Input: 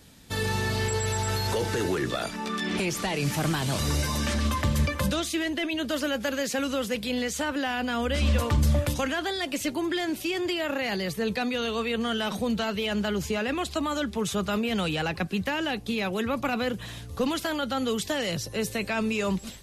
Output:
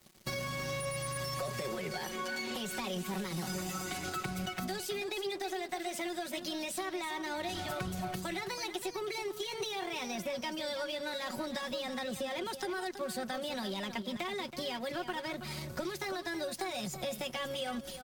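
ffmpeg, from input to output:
ffmpeg -i in.wav -af "aecho=1:1:6.8:0.82,acompressor=threshold=-34dB:ratio=6,asetrate=50951,aresample=44100,atempo=0.865537,aeval=exprs='sgn(val(0))*max(abs(val(0))-0.00335,0)':channel_layout=same,asetrate=48000,aresample=44100,aecho=1:1:326:0.299" out.wav

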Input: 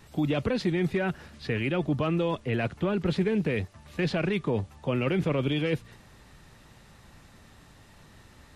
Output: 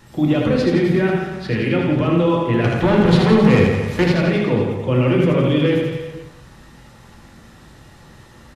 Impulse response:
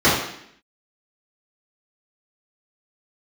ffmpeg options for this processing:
-filter_complex "[0:a]asettb=1/sr,asplit=3[link_01][link_02][link_03];[link_01]atrim=end=2.644[link_04];[link_02]atrim=start=2.64:end=4.04,asetpts=PTS-STARTPTS,afade=type=in:duration=0.004:curve=qsin,afade=type=out:start_time=1.396:duration=0.004:curve=qsin,aeval=exprs='0.178*(cos(1*acos(clip(val(0)/0.178,-1,1)))-cos(1*PI/2))+0.0562*(cos(5*acos(clip(val(0)/0.178,-1,1)))-cos(5*PI/2))':channel_layout=same[link_05];[link_03]atrim=start=4.036[link_06];[link_04][link_05]acrossfade=duration=0.004:curve1=hsin:curve2=qsin[link_07];[link_07][link_06]acrossfade=duration=0.004:curve1=qsin:curve2=hsin,aecho=1:1:80|168|264.8|371.3|488.4:0.631|0.398|0.251|0.158|0.1,asplit=2[link_08][link_09];[1:a]atrim=start_sample=2205[link_10];[link_09][link_10]afir=irnorm=-1:irlink=0,volume=-25dB[link_11];[link_08][link_11]amix=inputs=2:normalize=0,volume=4dB"

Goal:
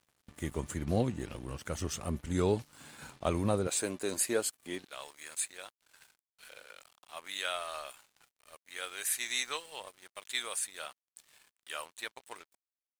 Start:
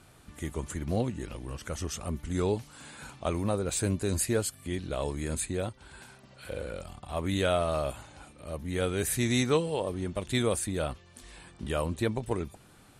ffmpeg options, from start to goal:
ffmpeg -i in.wav -af "asetnsamples=nb_out_samples=441:pad=0,asendcmd='3.67 highpass f 350;4.85 highpass f 1300',highpass=65,aeval=exprs='sgn(val(0))*max(abs(val(0))-0.00251,0)':channel_layout=same" out.wav

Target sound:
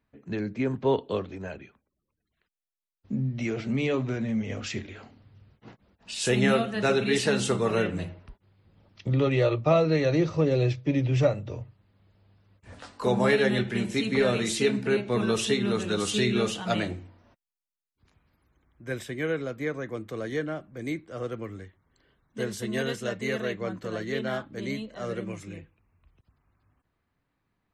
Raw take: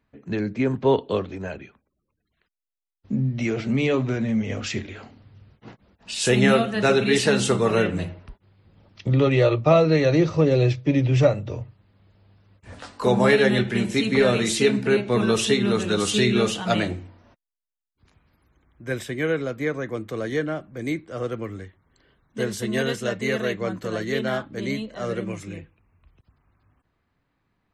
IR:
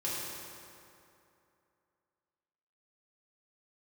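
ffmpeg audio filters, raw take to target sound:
-filter_complex "[0:a]asettb=1/sr,asplit=3[link_01][link_02][link_03];[link_01]atrim=end=23.404[link_04];[link_02]atrim=start=23.4:end=24.3,asetpts=PTS-STARTPTS,afade=type=in:duration=0.004:curve=qsin,afade=type=out:start_time=0.896:duration=0.004:curve=qsin,highshelf=frequency=10000:gain=-9.5[link_05];[link_03]atrim=start=24.296[link_06];[link_04][link_05]acrossfade=duration=0.004:curve1=hsin:curve2=qsin[link_07];[link_07][link_06]acrossfade=duration=0.004:curve1=qsin:curve2=hsin,volume=-5dB"

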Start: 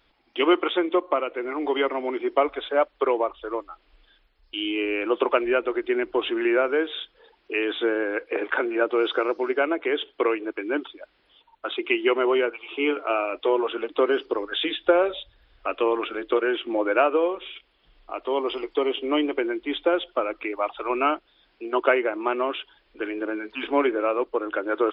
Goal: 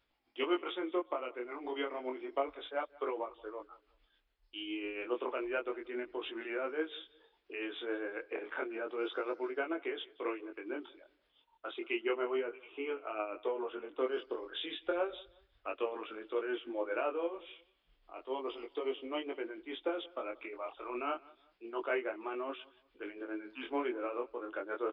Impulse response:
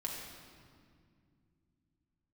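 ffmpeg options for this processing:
-filter_complex "[0:a]tremolo=f=7.2:d=0.52,flanger=delay=18.5:depth=6.3:speed=0.31,asettb=1/sr,asplit=3[link_01][link_02][link_03];[link_01]atrim=end=12.014[link_04];[link_02]atrim=start=12.01:end=14,asetpts=PTS-STARTPTS,afade=type=in:duration=0.004:curve=qsin,afade=type=out:start_time=1.986:duration=0.004:curve=qsin,lowpass=2700[link_05];[link_03]atrim=start=13.996[link_06];[link_04][link_05]acrossfade=duration=0.004:curve1=hsin:curve2=qsin[link_07];[link_07][link_06]acrossfade=duration=0.004:curve1=qsin:curve2=hsin,asplit=2[link_08][link_09];[link_09]aecho=0:1:180|360:0.0708|0.0212[link_10];[link_08][link_10]amix=inputs=2:normalize=0,volume=-8.5dB"

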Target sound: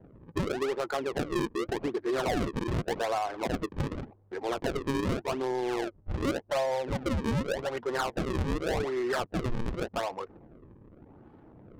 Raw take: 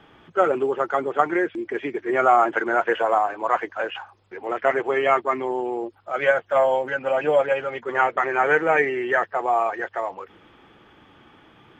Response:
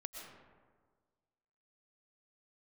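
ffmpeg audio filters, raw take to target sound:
-af "lowshelf=frequency=94:gain=4.5,bandreject=frequency=1200:width=24,acompressor=threshold=-26dB:ratio=4,acrusher=samples=36:mix=1:aa=0.000001:lfo=1:lforange=57.6:lforate=0.86,asoftclip=type=tanh:threshold=-22.5dB,adynamicsmooth=sensitivity=4.5:basefreq=560,volume=1dB"

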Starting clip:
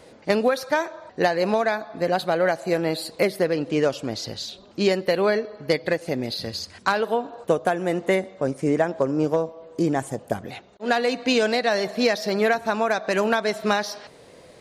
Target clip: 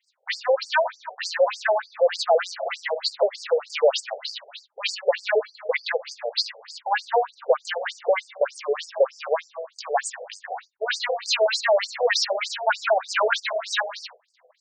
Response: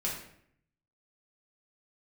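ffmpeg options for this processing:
-filter_complex "[0:a]asplit=2[link_01][link_02];[link_02]highpass=frequency=720:poles=1,volume=21dB,asoftclip=type=tanh:threshold=-7dB[link_03];[link_01][link_03]amix=inputs=2:normalize=0,lowpass=frequency=7500:poles=1,volume=-6dB,agate=range=-30dB:threshold=-33dB:ratio=16:detection=peak,afftfilt=real='re*between(b*sr/1024,550*pow(6500/550,0.5+0.5*sin(2*PI*3.3*pts/sr))/1.41,550*pow(6500/550,0.5+0.5*sin(2*PI*3.3*pts/sr))*1.41)':imag='im*between(b*sr/1024,550*pow(6500/550,0.5+0.5*sin(2*PI*3.3*pts/sr))/1.41,550*pow(6500/550,0.5+0.5*sin(2*PI*3.3*pts/sr))*1.41)':win_size=1024:overlap=0.75"

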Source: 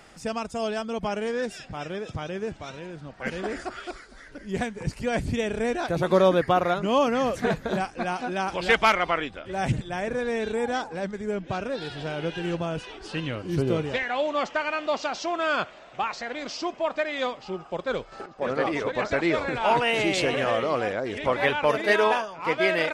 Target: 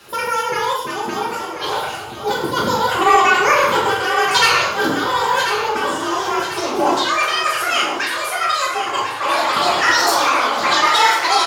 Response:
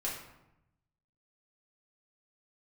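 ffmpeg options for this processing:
-filter_complex "[0:a]afreqshift=20,asetrate=88200,aresample=44100,aecho=1:1:1039|2078|3117|4156|5195:0.316|0.139|0.0612|0.0269|0.0119[link_01];[1:a]atrim=start_sample=2205,afade=type=out:start_time=0.21:duration=0.01,atrim=end_sample=9702,asetrate=33957,aresample=44100[link_02];[link_01][link_02]afir=irnorm=-1:irlink=0,acontrast=36,volume=-1dB"

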